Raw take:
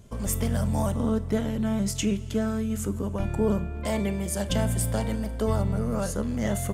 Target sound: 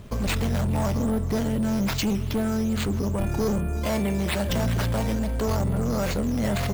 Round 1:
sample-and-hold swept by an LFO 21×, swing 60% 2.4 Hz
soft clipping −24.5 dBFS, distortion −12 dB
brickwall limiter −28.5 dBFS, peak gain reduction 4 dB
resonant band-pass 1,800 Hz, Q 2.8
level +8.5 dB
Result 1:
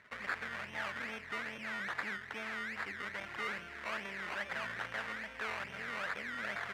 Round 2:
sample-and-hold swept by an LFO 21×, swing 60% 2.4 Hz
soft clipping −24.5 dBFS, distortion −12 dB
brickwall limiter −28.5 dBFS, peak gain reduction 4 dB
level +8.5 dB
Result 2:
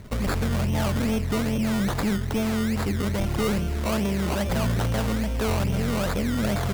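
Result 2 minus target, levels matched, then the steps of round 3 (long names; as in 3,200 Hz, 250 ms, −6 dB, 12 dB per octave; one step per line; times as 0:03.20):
sample-and-hold swept by an LFO: distortion +7 dB
sample-and-hold swept by an LFO 6×, swing 60% 2.4 Hz
soft clipping −24.5 dBFS, distortion −12 dB
brickwall limiter −28.5 dBFS, peak gain reduction 4 dB
level +8.5 dB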